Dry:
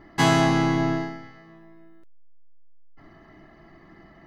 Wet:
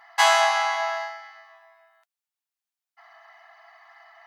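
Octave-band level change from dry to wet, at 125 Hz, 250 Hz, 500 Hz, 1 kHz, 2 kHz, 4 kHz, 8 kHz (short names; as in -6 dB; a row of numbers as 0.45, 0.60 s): under -40 dB, under -40 dB, -0.5 dB, +4.5 dB, +4.5 dB, +4.5 dB, +4.5 dB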